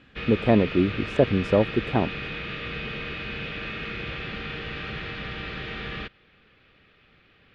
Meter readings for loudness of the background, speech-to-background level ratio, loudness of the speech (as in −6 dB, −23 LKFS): −33.0 LKFS, 9.5 dB, −23.5 LKFS